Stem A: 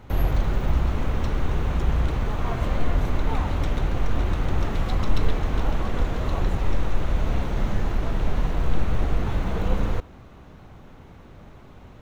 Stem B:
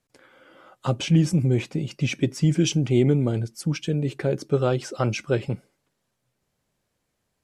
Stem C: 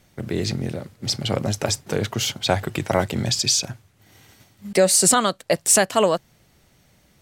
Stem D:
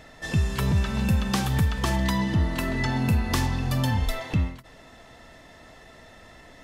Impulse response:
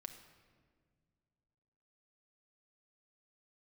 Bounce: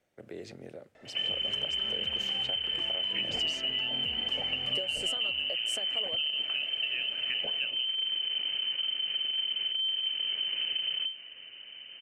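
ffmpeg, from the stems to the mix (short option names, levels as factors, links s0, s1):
-filter_complex "[0:a]asoftclip=type=tanh:threshold=0.119,adelay=1050,volume=1.19[s0];[1:a]bandreject=f=85.98:t=h:w=4,bandreject=f=171.96:t=h:w=4,bandreject=f=257.94:t=h:w=4,bandreject=f=343.92:t=h:w=4,bandreject=f=429.9:t=h:w=4,bandreject=f=515.88:t=h:w=4,bandreject=f=601.86:t=h:w=4,bandreject=f=687.84:t=h:w=4,bandreject=f=773.82:t=h:w=4,bandreject=f=859.8:t=h:w=4,bandreject=f=945.78:t=h:w=4,bandreject=f=1031.76:t=h:w=4,bandreject=f=1117.74:t=h:w=4,bandreject=f=1203.72:t=h:w=4,bandreject=f=1289.7:t=h:w=4,bandreject=f=1375.68:t=h:w=4,bandreject=f=1461.66:t=h:w=4,bandreject=f=1547.64:t=h:w=4,bandreject=f=1633.62:t=h:w=4,bandreject=f=1719.6:t=h:w=4,bandreject=f=1805.58:t=h:w=4,bandreject=f=1891.56:t=h:w=4,bandreject=f=1977.54:t=h:w=4,bandreject=f=2063.52:t=h:w=4,bandreject=f=2149.5:t=h:w=4,bandreject=f=2235.48:t=h:w=4,bandreject=f=2321.46:t=h:w=4,bandreject=f=2407.44:t=h:w=4,bandreject=f=2493.42:t=h:w=4,bandreject=f=2579.4:t=h:w=4,bandreject=f=2665.38:t=h:w=4,bandreject=f=2751.36:t=h:w=4,bandreject=f=2837.34:t=h:w=4,bandreject=f=2923.32:t=h:w=4,bandreject=f=3009.3:t=h:w=4,bandreject=f=3095.28:t=h:w=4,bandreject=f=3181.26:t=h:w=4,adelay=2300,volume=1.33[s1];[2:a]volume=0.398[s2];[3:a]lowpass=9500,alimiter=limit=0.0891:level=0:latency=1,adelay=950,volume=0.841[s3];[s2][s3]amix=inputs=2:normalize=0,acrossover=split=490 2800:gain=0.0794 1 0.126[s4][s5][s6];[s4][s5][s6]amix=inputs=3:normalize=0,acompressor=threshold=0.0112:ratio=6,volume=1[s7];[s0][s1]amix=inputs=2:normalize=0,lowpass=f=2600:t=q:w=0.5098,lowpass=f=2600:t=q:w=0.6013,lowpass=f=2600:t=q:w=0.9,lowpass=f=2600:t=q:w=2.563,afreqshift=-3100,acompressor=threshold=0.0562:ratio=10,volume=1[s8];[s7][s8]amix=inputs=2:normalize=0,equalizer=f=125:t=o:w=1:g=3,equalizer=f=250:t=o:w=1:g=5,equalizer=f=500:t=o:w=1:g=4,equalizer=f=1000:t=o:w=1:g=-11,equalizer=f=2000:t=o:w=1:g=-4,equalizer=f=4000:t=o:w=1:g=-3,equalizer=f=8000:t=o:w=1:g=5"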